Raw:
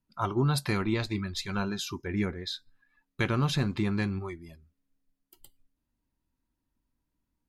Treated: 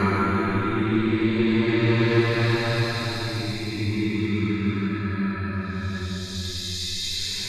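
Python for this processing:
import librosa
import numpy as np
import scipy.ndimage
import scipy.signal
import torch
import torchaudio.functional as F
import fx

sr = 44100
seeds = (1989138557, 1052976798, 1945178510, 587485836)

y = fx.paulstretch(x, sr, seeds[0], factor=12.0, window_s=0.25, from_s=0.79)
y = fx.dynamic_eq(y, sr, hz=1200.0, q=1.0, threshold_db=-45.0, ratio=4.0, max_db=4)
y = F.gain(torch.from_numpy(y), 6.0).numpy()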